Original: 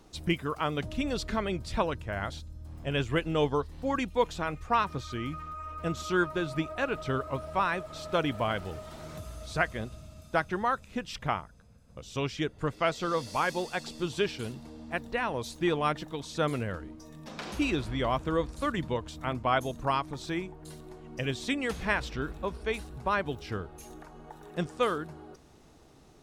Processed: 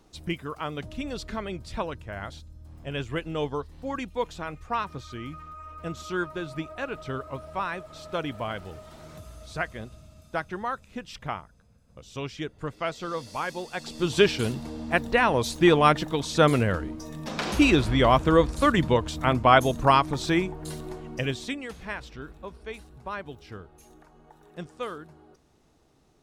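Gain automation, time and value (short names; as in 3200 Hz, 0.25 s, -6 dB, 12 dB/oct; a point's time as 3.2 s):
13.67 s -2.5 dB
14.19 s +9.5 dB
20.92 s +9.5 dB
21.4 s +1 dB
21.68 s -6.5 dB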